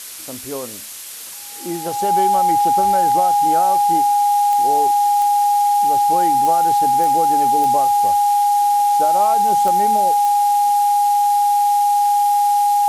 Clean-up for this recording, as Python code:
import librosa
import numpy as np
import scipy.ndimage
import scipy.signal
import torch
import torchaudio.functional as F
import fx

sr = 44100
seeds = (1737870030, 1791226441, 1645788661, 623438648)

y = fx.fix_declick_ar(x, sr, threshold=10.0)
y = fx.notch(y, sr, hz=820.0, q=30.0)
y = fx.noise_reduce(y, sr, print_start_s=1.03, print_end_s=1.53, reduce_db=30.0)